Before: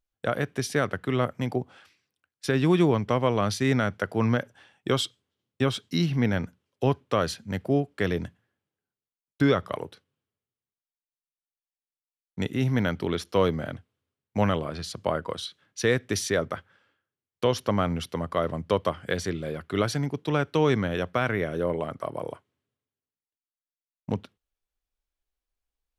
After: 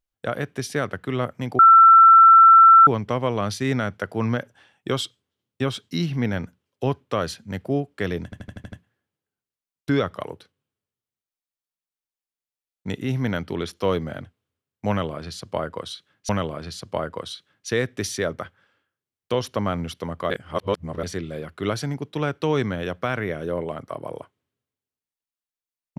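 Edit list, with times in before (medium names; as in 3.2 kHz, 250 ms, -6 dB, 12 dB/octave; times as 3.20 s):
1.59–2.87 s: bleep 1.34 kHz -7 dBFS
8.24 s: stutter 0.08 s, 7 plays
14.41–15.81 s: loop, 2 plays
18.42–19.15 s: reverse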